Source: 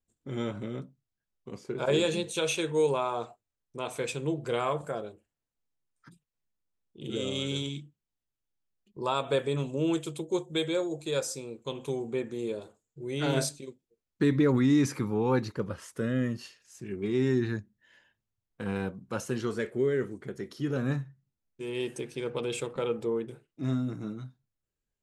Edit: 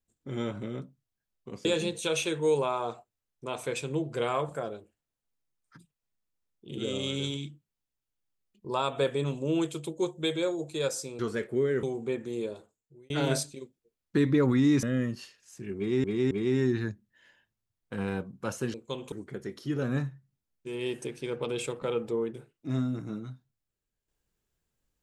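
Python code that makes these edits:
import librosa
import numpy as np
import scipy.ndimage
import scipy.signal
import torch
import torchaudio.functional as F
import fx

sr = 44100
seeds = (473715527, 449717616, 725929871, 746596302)

y = fx.edit(x, sr, fx.cut(start_s=1.65, length_s=0.32),
    fx.swap(start_s=11.51, length_s=0.38, other_s=19.42, other_length_s=0.64),
    fx.fade_out_span(start_s=12.51, length_s=0.65),
    fx.cut(start_s=14.89, length_s=1.16),
    fx.repeat(start_s=16.99, length_s=0.27, count=3), tone=tone)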